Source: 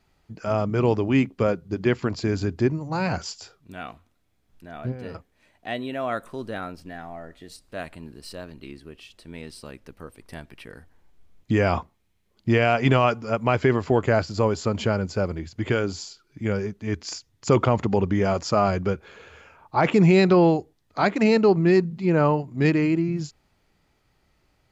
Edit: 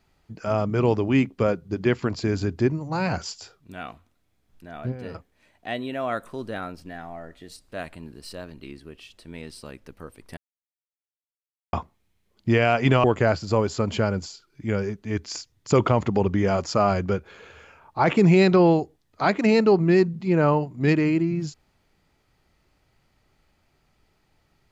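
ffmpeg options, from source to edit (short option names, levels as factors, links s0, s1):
-filter_complex "[0:a]asplit=5[s0][s1][s2][s3][s4];[s0]atrim=end=10.37,asetpts=PTS-STARTPTS,afade=t=out:st=10.366:d=0.004:c=hsin[s5];[s1]atrim=start=10.37:end=11.73,asetpts=PTS-STARTPTS,volume=0[s6];[s2]atrim=start=11.73:end=13.042,asetpts=PTS-STARTPTS,afade=t=in:d=0.004:c=hsin[s7];[s3]atrim=start=13.908:end=15.132[s8];[s4]atrim=start=16.028[s9];[s5][s6][s7]concat=n=3:v=0:a=1[s10];[s10][s8]acrossfade=d=0.004:c1=hsin:c2=hsin[s11];[s11][s9]acrossfade=d=0.004:c1=hsin:c2=hsin"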